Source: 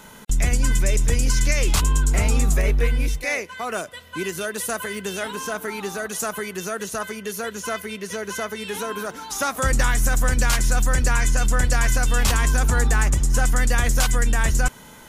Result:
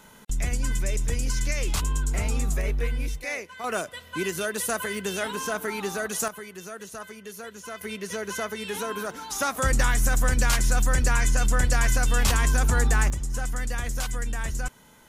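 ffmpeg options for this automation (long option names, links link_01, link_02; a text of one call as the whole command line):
ffmpeg -i in.wav -af "asetnsamples=nb_out_samples=441:pad=0,asendcmd='3.64 volume volume -1dB;6.28 volume volume -10.5dB;7.81 volume volume -2.5dB;13.1 volume volume -10dB',volume=-7dB" out.wav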